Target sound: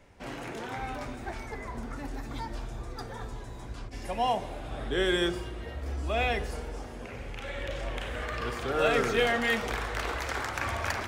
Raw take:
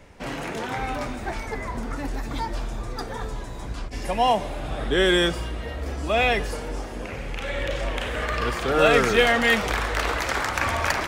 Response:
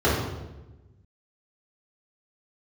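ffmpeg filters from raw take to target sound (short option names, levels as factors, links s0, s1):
-filter_complex "[0:a]asplit=2[s0][s1];[1:a]atrim=start_sample=2205[s2];[s1][s2]afir=irnorm=-1:irlink=0,volume=0.0282[s3];[s0][s3]amix=inputs=2:normalize=0,volume=0.376"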